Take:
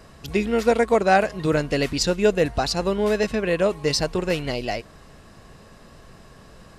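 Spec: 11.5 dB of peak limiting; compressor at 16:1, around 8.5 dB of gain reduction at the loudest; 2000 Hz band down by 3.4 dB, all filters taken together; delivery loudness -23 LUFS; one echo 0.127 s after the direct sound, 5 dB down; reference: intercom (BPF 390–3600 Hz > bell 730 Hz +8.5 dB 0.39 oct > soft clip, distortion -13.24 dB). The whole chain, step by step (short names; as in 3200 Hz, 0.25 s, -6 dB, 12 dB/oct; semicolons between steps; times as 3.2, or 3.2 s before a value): bell 2000 Hz -4.5 dB; compressor 16:1, threshold -21 dBFS; limiter -23.5 dBFS; BPF 390–3600 Hz; bell 730 Hz +8.5 dB 0.39 oct; echo 0.127 s -5 dB; soft clip -27 dBFS; gain +12 dB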